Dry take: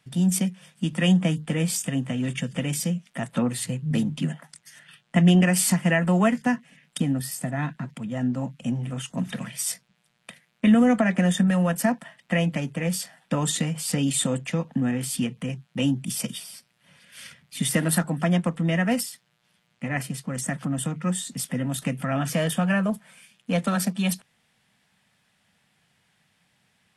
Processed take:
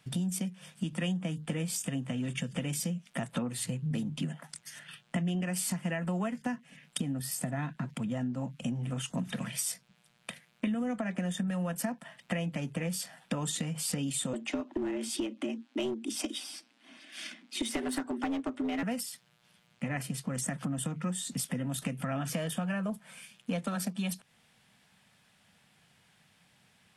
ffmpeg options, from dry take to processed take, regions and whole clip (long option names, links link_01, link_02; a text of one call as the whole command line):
ffmpeg -i in.wav -filter_complex "[0:a]asettb=1/sr,asplit=3[link_01][link_02][link_03];[link_01]atrim=end=14.334[link_04];[link_02]atrim=start=14.33:end=18.83,asetpts=PTS-STARTPTS,afade=type=in:duration=0.004:curve=qsin,afade=type=out:start_time=4.496:duration=0.004:curve=qsin,lowpass=6900,afreqshift=95,aeval=exprs='clip(val(0),-1,0.0891)':channel_layout=same[link_05];[link_03]atrim=start=18.826[link_06];[link_04][link_05]acrossfade=duration=0.004:curve1=hsin:curve2=qsin[link_07];[link_07][link_06]acrossfade=duration=0.004:curve1=qsin:curve2=hsin,equalizer=frequency=1900:width_type=o:width=0.21:gain=-3,acompressor=threshold=-33dB:ratio=6,volume=2dB" out.wav